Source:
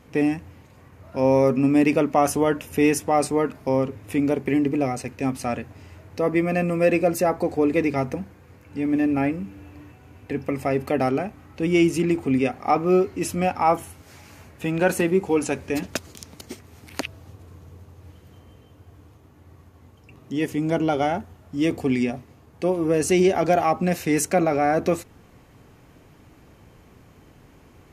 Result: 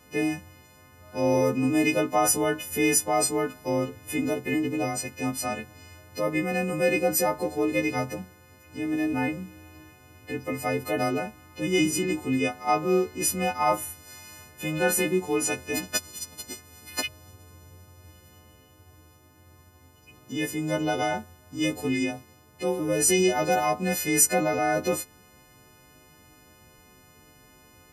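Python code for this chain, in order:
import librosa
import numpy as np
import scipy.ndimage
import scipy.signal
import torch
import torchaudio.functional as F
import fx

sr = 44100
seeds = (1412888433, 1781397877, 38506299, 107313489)

y = fx.freq_snap(x, sr, grid_st=3)
y = F.gain(torch.from_numpy(y), -4.5).numpy()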